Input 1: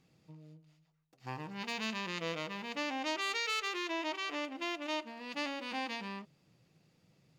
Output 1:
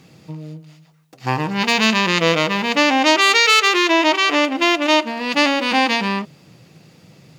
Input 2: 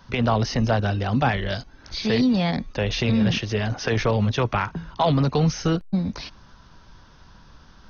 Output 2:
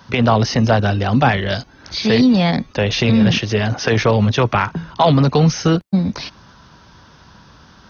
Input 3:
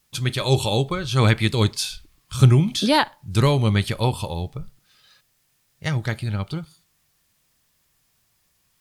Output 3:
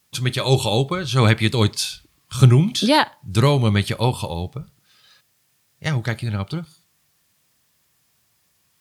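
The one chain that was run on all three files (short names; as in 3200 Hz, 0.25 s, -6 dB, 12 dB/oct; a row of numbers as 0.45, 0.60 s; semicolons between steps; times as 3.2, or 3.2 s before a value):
HPF 79 Hz; normalise peaks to -1.5 dBFS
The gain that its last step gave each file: +21.5, +7.0, +2.0 dB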